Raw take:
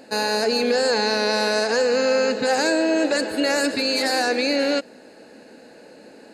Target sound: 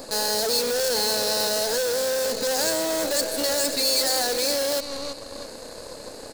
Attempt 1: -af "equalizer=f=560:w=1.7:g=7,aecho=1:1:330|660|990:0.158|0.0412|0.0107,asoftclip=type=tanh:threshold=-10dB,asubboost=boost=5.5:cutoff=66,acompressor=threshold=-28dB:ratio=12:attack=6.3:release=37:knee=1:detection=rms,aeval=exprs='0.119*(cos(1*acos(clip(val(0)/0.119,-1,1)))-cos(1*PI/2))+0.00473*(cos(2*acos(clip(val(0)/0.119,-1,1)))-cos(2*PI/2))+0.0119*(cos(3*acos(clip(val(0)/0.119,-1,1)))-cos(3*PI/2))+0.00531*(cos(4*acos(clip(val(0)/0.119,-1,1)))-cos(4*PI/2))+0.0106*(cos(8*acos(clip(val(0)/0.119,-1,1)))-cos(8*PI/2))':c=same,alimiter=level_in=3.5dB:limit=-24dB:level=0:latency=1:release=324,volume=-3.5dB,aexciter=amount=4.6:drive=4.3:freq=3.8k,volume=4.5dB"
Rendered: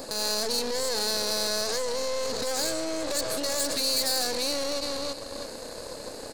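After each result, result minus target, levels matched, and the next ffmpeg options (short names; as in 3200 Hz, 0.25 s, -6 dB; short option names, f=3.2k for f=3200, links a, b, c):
compressor: peak gain reduction +14.5 dB; soft clip: distortion +13 dB
-af "equalizer=f=560:w=1.7:g=7,aecho=1:1:330|660|990:0.158|0.0412|0.0107,asoftclip=type=tanh:threshold=-10dB,asubboost=boost=5.5:cutoff=66,aeval=exprs='0.119*(cos(1*acos(clip(val(0)/0.119,-1,1)))-cos(1*PI/2))+0.00473*(cos(2*acos(clip(val(0)/0.119,-1,1)))-cos(2*PI/2))+0.0119*(cos(3*acos(clip(val(0)/0.119,-1,1)))-cos(3*PI/2))+0.00531*(cos(4*acos(clip(val(0)/0.119,-1,1)))-cos(4*PI/2))+0.0106*(cos(8*acos(clip(val(0)/0.119,-1,1)))-cos(8*PI/2))':c=same,alimiter=level_in=3.5dB:limit=-24dB:level=0:latency=1:release=324,volume=-3.5dB,aexciter=amount=4.6:drive=4.3:freq=3.8k,volume=4.5dB"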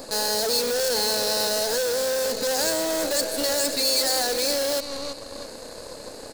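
soft clip: distortion +13 dB
-af "equalizer=f=560:w=1.7:g=7,aecho=1:1:330|660|990:0.158|0.0412|0.0107,asoftclip=type=tanh:threshold=-2dB,asubboost=boost=5.5:cutoff=66,aeval=exprs='0.119*(cos(1*acos(clip(val(0)/0.119,-1,1)))-cos(1*PI/2))+0.00473*(cos(2*acos(clip(val(0)/0.119,-1,1)))-cos(2*PI/2))+0.0119*(cos(3*acos(clip(val(0)/0.119,-1,1)))-cos(3*PI/2))+0.00531*(cos(4*acos(clip(val(0)/0.119,-1,1)))-cos(4*PI/2))+0.0106*(cos(8*acos(clip(val(0)/0.119,-1,1)))-cos(8*PI/2))':c=same,alimiter=level_in=3.5dB:limit=-24dB:level=0:latency=1:release=324,volume=-3.5dB,aexciter=amount=4.6:drive=4.3:freq=3.8k,volume=4.5dB"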